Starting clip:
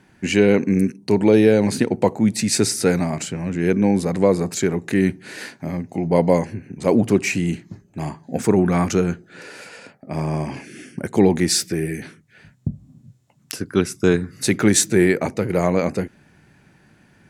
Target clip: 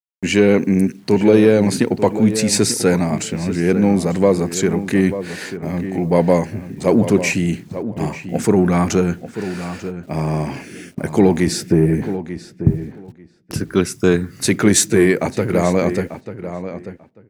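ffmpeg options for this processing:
ffmpeg -i in.wav -filter_complex "[0:a]agate=range=-25dB:threshold=-41dB:ratio=16:detection=peak,asettb=1/sr,asplit=3[link_01][link_02][link_03];[link_01]atrim=end=11.474[link_04];[link_02]atrim=start=11.47:end=13.54,asetpts=PTS-STARTPTS,afade=type=in:duration=0.004:curve=qsin,afade=type=out:start_time=2.066:duration=0.004:curve=qsin,tiltshelf=frequency=1100:gain=9[link_05];[link_03]atrim=start=13.536[link_06];[link_04][link_05]acrossfade=duration=0.004:curve1=hsin:curve2=qsin[link_07];[link_07][link_06]acrossfade=duration=0.004:curve1=qsin:curve2=hsin,asplit=2[link_08][link_09];[link_09]asoftclip=type=tanh:threshold=-14dB,volume=-6.5dB[link_10];[link_08][link_10]amix=inputs=2:normalize=0,acrusher=bits=8:mix=0:aa=0.000001,asplit=2[link_11][link_12];[link_12]adelay=891,lowpass=frequency=2400:poles=1,volume=-11dB,asplit=2[link_13][link_14];[link_14]adelay=891,lowpass=frequency=2400:poles=1,volume=0.17[link_15];[link_11][link_13][link_15]amix=inputs=3:normalize=0" out.wav

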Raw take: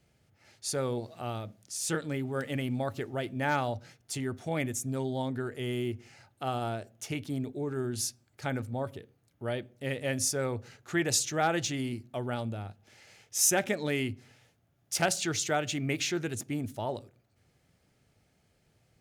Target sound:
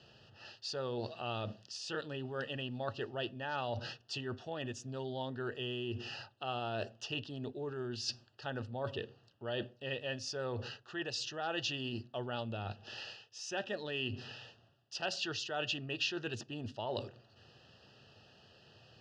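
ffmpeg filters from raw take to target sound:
ffmpeg -i in.wav -af "areverse,acompressor=threshold=-44dB:ratio=16,areverse,asuperstop=centerf=2200:order=12:qfactor=3.8,highpass=120,equalizer=frequency=170:width_type=q:width=4:gain=-8,equalizer=frequency=280:width_type=q:width=4:gain=-7,equalizer=frequency=2800:width_type=q:width=4:gain=10,equalizer=frequency=4800:width_type=q:width=4:gain=7,lowpass=frequency=4900:width=0.5412,lowpass=frequency=4900:width=1.3066,volume=10dB" out.wav

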